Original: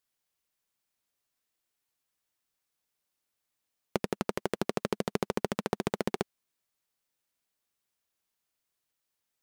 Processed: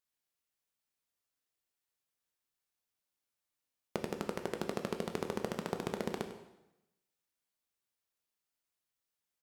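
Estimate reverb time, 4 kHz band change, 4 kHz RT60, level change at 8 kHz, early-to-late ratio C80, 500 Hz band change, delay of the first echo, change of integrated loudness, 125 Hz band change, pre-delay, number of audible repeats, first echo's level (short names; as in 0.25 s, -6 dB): 0.90 s, -5.5 dB, 0.85 s, -5.5 dB, 9.5 dB, -5.0 dB, 99 ms, -5.5 dB, -5.5 dB, 6 ms, 1, -14.0 dB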